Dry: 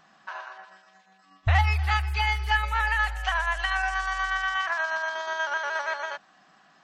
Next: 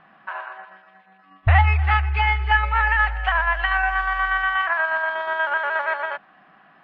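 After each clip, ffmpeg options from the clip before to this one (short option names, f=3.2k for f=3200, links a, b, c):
-af "lowpass=f=2.7k:w=0.5412,lowpass=f=2.7k:w=1.3066,volume=6dB"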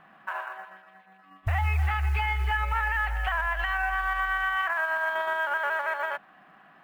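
-af "acrusher=bits=8:mode=log:mix=0:aa=0.000001,alimiter=limit=-16.5dB:level=0:latency=1:release=84,volume=-2dB"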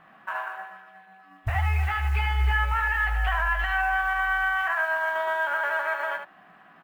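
-af "aecho=1:1:17|76:0.531|0.473"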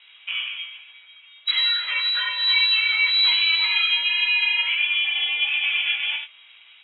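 -af "flanger=delay=18:depth=3.8:speed=1.5,lowpass=f=3.4k:t=q:w=0.5098,lowpass=f=3.4k:t=q:w=0.6013,lowpass=f=3.4k:t=q:w=0.9,lowpass=f=3.4k:t=q:w=2.563,afreqshift=-4000,volume=6.5dB"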